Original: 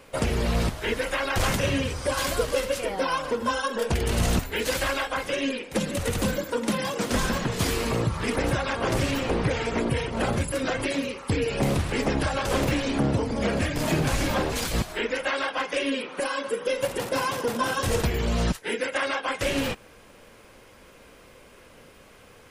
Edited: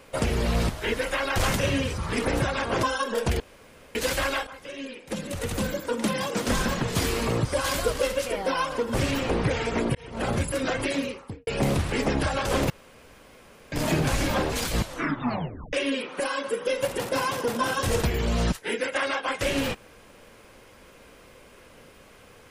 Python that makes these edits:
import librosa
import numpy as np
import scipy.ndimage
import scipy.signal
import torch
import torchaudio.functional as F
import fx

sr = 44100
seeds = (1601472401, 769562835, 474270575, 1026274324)

y = fx.studio_fade_out(x, sr, start_s=11.01, length_s=0.46)
y = fx.edit(y, sr, fx.swap(start_s=1.98, length_s=1.49, other_s=8.09, other_length_s=0.85),
    fx.room_tone_fill(start_s=4.04, length_s=0.55),
    fx.fade_in_from(start_s=5.11, length_s=1.6, floor_db=-16.0),
    fx.fade_in_span(start_s=9.95, length_s=0.39),
    fx.room_tone_fill(start_s=12.7, length_s=1.02),
    fx.tape_stop(start_s=14.76, length_s=0.97), tone=tone)